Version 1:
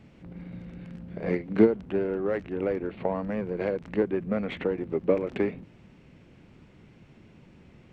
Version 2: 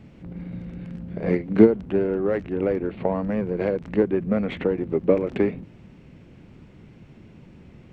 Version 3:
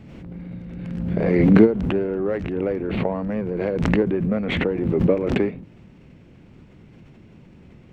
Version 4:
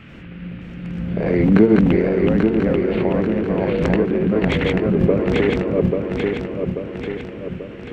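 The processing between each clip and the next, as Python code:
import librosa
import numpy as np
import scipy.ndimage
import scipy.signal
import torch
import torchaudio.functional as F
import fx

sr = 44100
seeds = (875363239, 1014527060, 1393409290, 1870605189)

y1 = fx.low_shelf(x, sr, hz=470.0, db=5.0)
y1 = F.gain(torch.from_numpy(y1), 2.0).numpy()
y2 = fx.pre_swell(y1, sr, db_per_s=28.0)
y2 = F.gain(torch.from_numpy(y2), -1.0).numpy()
y3 = fx.reverse_delay_fb(y2, sr, ms=419, feedback_pct=72, wet_db=-1)
y3 = fx.dmg_noise_band(y3, sr, seeds[0], low_hz=1200.0, high_hz=2900.0, level_db=-49.0)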